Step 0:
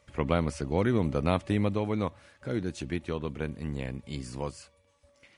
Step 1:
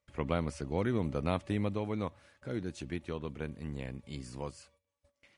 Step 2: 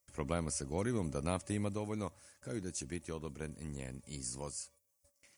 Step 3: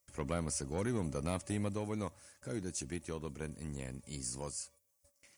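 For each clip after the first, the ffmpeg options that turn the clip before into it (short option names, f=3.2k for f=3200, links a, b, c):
-af "agate=range=-15dB:threshold=-60dB:ratio=16:detection=peak,volume=-5.5dB"
-af "aexciter=amount=7.1:drive=5.5:freq=5.2k,volume=-4dB"
-af "asoftclip=type=tanh:threshold=-27dB,volume=1.5dB"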